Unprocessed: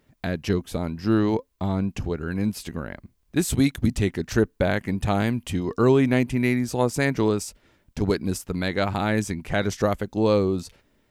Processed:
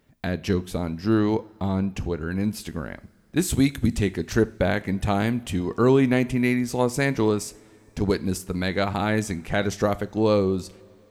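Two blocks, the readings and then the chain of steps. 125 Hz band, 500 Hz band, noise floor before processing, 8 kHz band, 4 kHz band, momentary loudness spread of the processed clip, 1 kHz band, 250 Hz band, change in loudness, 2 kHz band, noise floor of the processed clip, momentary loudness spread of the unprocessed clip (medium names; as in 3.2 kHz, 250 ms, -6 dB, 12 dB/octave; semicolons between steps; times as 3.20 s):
-0.5 dB, 0.0 dB, -67 dBFS, 0.0 dB, 0.0 dB, 9 LU, 0.0 dB, 0.0 dB, 0.0 dB, 0.0 dB, -55 dBFS, 9 LU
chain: two-slope reverb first 0.42 s, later 3.7 s, from -20 dB, DRR 15 dB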